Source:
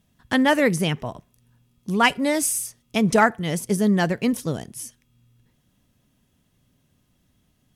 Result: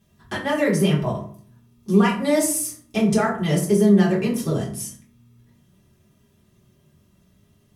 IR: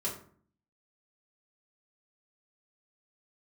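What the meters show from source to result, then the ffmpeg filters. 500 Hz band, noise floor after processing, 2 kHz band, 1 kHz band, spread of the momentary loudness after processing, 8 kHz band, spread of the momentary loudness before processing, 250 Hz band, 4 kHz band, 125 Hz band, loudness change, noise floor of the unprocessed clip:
+2.5 dB, -61 dBFS, -5.0 dB, -4.0 dB, 14 LU, +0.5 dB, 16 LU, +3.0 dB, -3.5 dB, +4.5 dB, +1.0 dB, -67 dBFS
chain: -filter_complex "[0:a]acompressor=threshold=0.1:ratio=6,alimiter=limit=0.158:level=0:latency=1:release=207[s0];[1:a]atrim=start_sample=2205[s1];[s0][s1]afir=irnorm=-1:irlink=0,volume=1.19"

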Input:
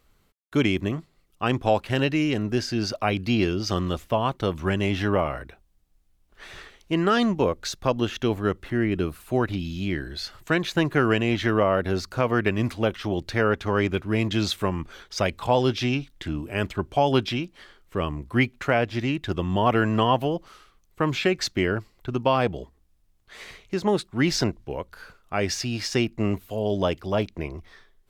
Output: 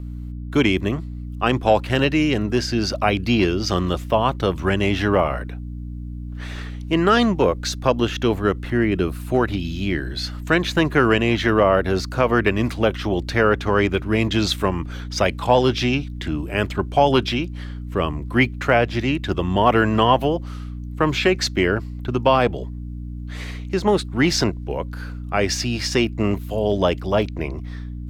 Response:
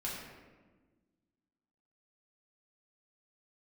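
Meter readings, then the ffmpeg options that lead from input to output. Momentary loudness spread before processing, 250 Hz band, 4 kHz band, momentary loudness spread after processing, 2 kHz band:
11 LU, +4.0 dB, +5.0 dB, 15 LU, +5.5 dB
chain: -filter_complex "[0:a]bass=f=250:g=-3,treble=f=4000:g=-1,aeval=exprs='val(0)+0.0178*(sin(2*PI*60*n/s)+sin(2*PI*2*60*n/s)/2+sin(2*PI*3*60*n/s)/3+sin(2*PI*4*60*n/s)/4+sin(2*PI*5*60*n/s)/5)':c=same,acrossover=split=530|5200[s0][s1][s2];[s0]volume=7.94,asoftclip=hard,volume=0.126[s3];[s3][s1][s2]amix=inputs=3:normalize=0,volume=1.88"

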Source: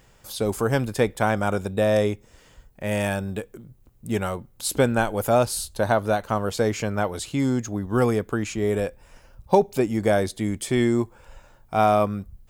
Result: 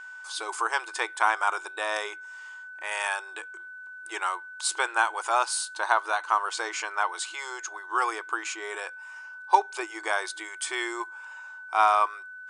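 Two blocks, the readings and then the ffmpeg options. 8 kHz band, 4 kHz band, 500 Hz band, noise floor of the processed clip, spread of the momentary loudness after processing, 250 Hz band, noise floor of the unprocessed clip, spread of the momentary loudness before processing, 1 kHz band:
-0.5 dB, +0.5 dB, -14.0 dB, -43 dBFS, 17 LU, -21.0 dB, -56 dBFS, 8 LU, +1.5 dB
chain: -af "lowshelf=f=730:t=q:w=3:g=-10.5,aeval=exprs='val(0)+0.01*sin(2*PI*1500*n/s)':c=same,afftfilt=real='re*between(b*sr/4096,320,10000)':imag='im*between(b*sr/4096,320,10000)':win_size=4096:overlap=0.75"

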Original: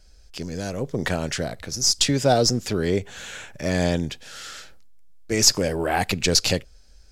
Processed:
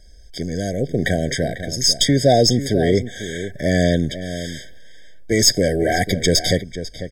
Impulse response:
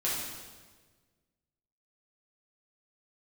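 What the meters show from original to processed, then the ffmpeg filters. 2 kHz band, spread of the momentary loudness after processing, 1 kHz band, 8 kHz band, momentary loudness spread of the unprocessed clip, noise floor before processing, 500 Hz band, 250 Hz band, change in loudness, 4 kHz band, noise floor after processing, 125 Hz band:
+4.0 dB, 14 LU, +2.5 dB, +1.0 dB, 18 LU, -50 dBFS, +6.0 dB, +6.0 dB, +3.5 dB, +3.0 dB, -41 dBFS, +6.0 dB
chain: -filter_complex "[0:a]asplit=2[s0][s1];[s1]adelay=495.6,volume=0.251,highshelf=f=4000:g=-11.2[s2];[s0][s2]amix=inputs=2:normalize=0,acontrast=90,afftfilt=real='re*eq(mod(floor(b*sr/1024/770),2),0)':imag='im*eq(mod(floor(b*sr/1024/770),2),0)':win_size=1024:overlap=0.75,volume=0.891"

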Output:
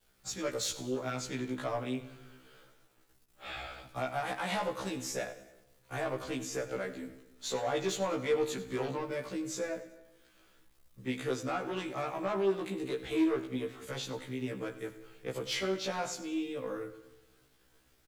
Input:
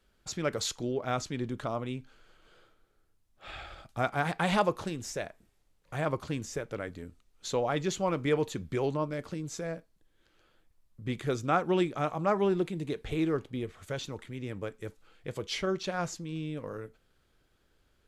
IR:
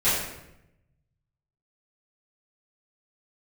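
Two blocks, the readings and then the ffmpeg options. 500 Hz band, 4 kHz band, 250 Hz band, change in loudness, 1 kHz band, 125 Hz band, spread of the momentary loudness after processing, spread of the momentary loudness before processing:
-2.0 dB, -0.5 dB, -2.5 dB, -3.0 dB, -4.5 dB, -8.0 dB, 12 LU, 15 LU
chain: -filter_complex "[0:a]highshelf=f=8600:g=9.5,acrossover=split=110|4300[s0][s1][s2];[s1]dynaudnorm=f=660:g=3:m=1.58[s3];[s0][s3][s2]amix=inputs=3:normalize=0,alimiter=limit=0.158:level=0:latency=1:release=128,acrossover=split=240|3000[s4][s5][s6];[s4]acompressor=threshold=0.00631:ratio=6[s7];[s7][s5][s6]amix=inputs=3:normalize=0,acrusher=bits=10:mix=0:aa=0.000001,asoftclip=type=tanh:threshold=0.0631,aecho=1:1:95|190|285|380:0.15|0.0748|0.0374|0.0187,asplit=2[s8][s9];[1:a]atrim=start_sample=2205,asetrate=33957,aresample=44100[s10];[s9][s10]afir=irnorm=-1:irlink=0,volume=0.0335[s11];[s8][s11]amix=inputs=2:normalize=0,afftfilt=real='re*1.73*eq(mod(b,3),0)':imag='im*1.73*eq(mod(b,3),0)':win_size=2048:overlap=0.75"

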